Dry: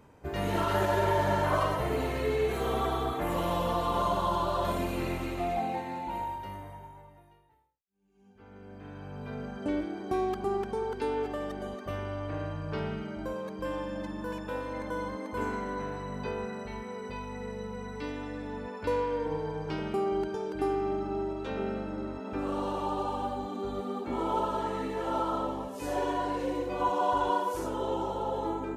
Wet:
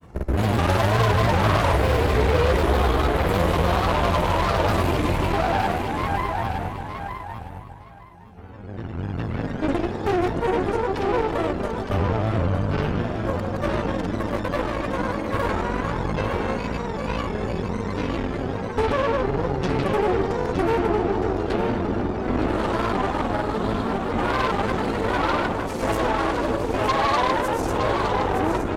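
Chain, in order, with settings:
parametric band 74 Hz +11 dB 1.4 octaves
in parallel at −1 dB: brickwall limiter −25 dBFS, peak gain reduction 10.5 dB
on the sum: granular cloud 100 ms, grains 20 per second, pitch spread up and down by 3 semitones
harmonic generator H 8 −16 dB, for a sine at −12.5 dBFS
on a send: repeating echo 914 ms, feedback 18%, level −7 dB
on the sum: level +3 dB

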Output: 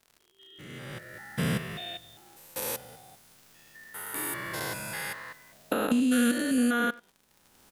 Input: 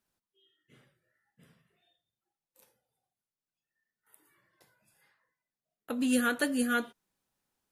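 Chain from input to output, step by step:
spectrum averaged block by block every 200 ms
camcorder AGC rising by 25 dB per second
0:06.00–0:06.58: parametric band 900 Hz −11 dB 1.2 octaves
far-end echo of a speakerphone 90 ms, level −20 dB
surface crackle 92 per second −50 dBFS
level +7 dB

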